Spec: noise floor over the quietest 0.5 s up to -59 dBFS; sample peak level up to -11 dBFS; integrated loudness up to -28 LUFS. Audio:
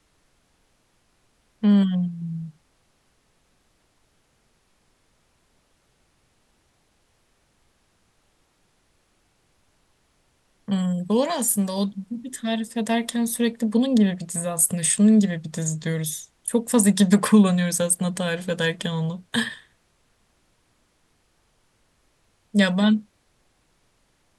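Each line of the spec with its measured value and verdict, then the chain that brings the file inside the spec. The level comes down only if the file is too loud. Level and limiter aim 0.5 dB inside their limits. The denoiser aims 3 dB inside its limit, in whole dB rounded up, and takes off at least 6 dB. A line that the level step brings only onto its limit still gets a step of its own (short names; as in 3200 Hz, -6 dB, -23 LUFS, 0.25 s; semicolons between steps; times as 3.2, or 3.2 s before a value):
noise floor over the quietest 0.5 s -66 dBFS: OK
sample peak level -4.5 dBFS: fail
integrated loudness -22.0 LUFS: fail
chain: gain -6.5 dB; limiter -11.5 dBFS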